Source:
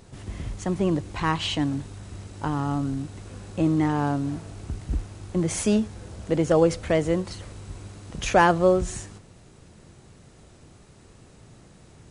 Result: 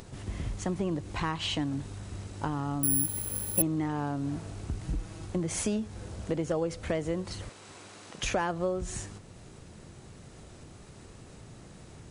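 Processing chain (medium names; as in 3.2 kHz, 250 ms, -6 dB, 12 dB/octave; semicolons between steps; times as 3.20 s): 7.49–8.23 s: frequency weighting A; upward compressor, threshold -42 dBFS; 4.83–5.26 s: comb 6.2 ms, depth 66%; compression 4:1, threshold -27 dBFS, peak gain reduction 12.5 dB; 2.83–3.62 s: careless resampling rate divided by 4×, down none, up zero stuff; trim -1 dB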